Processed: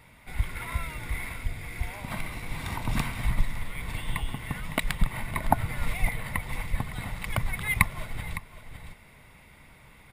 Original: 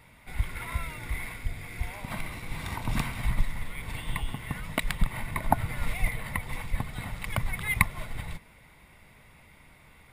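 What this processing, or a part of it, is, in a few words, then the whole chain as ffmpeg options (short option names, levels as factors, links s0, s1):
ducked delay: -filter_complex "[0:a]asplit=3[s0][s1][s2];[s1]adelay=559,volume=0.501[s3];[s2]apad=whole_len=471319[s4];[s3][s4]sidechaincompress=threshold=0.0224:ratio=4:attack=6:release=822[s5];[s0][s5]amix=inputs=2:normalize=0,volume=1.12"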